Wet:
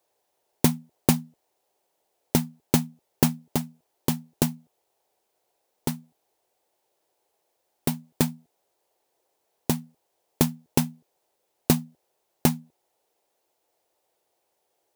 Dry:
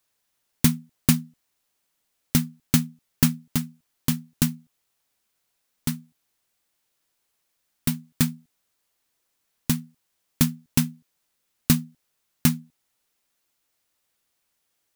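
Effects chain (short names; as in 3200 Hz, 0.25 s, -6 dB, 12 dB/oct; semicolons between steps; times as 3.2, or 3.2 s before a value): HPF 49 Hz; band shelf 560 Hz +15 dB; gain -2.5 dB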